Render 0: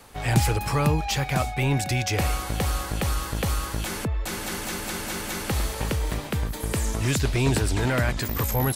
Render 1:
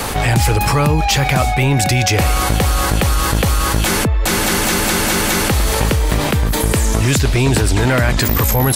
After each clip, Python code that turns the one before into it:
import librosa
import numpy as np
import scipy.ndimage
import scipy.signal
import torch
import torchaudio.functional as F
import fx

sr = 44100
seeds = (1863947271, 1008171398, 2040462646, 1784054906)

y = fx.env_flatten(x, sr, amount_pct=70)
y = y * 10.0 ** (4.0 / 20.0)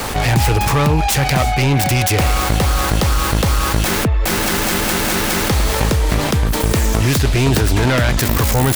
y = fx.self_delay(x, sr, depth_ms=0.22)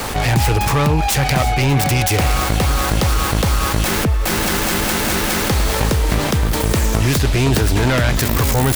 y = x + 10.0 ** (-13.5 / 20.0) * np.pad(x, (int(1019 * sr / 1000.0), 0))[:len(x)]
y = y * 10.0 ** (-1.0 / 20.0)